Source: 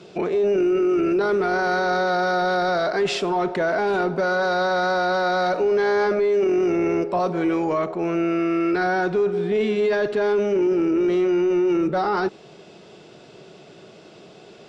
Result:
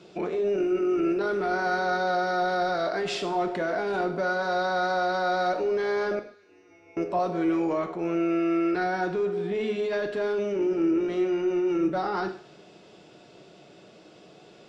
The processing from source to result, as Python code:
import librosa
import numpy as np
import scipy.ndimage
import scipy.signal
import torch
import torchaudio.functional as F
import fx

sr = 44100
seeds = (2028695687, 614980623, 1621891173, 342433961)

p1 = fx.comb_fb(x, sr, f0_hz=95.0, decay_s=0.98, harmonics='odd', damping=0.0, mix_pct=100, at=(6.19, 6.97))
p2 = p1 + fx.echo_wet_highpass(p1, sr, ms=102, feedback_pct=52, hz=1700.0, wet_db=-17.0, dry=0)
p3 = fx.rev_gated(p2, sr, seeds[0], gate_ms=170, shape='falling', drr_db=6.0)
y = p3 * 10.0 ** (-6.5 / 20.0)